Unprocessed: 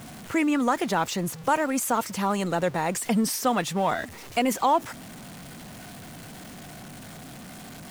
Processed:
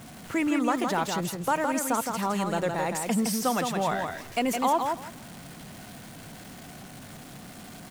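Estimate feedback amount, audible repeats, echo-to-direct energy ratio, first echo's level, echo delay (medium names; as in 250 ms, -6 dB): 17%, 2, -5.0 dB, -5.0 dB, 164 ms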